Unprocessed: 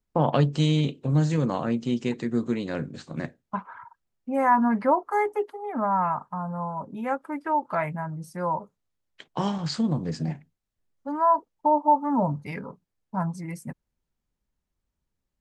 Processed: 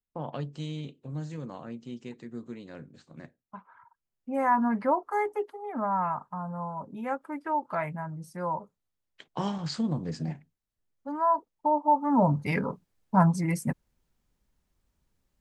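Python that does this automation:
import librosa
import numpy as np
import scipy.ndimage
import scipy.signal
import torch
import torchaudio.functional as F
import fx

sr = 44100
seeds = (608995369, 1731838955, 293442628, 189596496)

y = fx.gain(x, sr, db=fx.line((3.68, -14.0), (4.33, -4.0), (11.85, -4.0), (12.56, 7.0)))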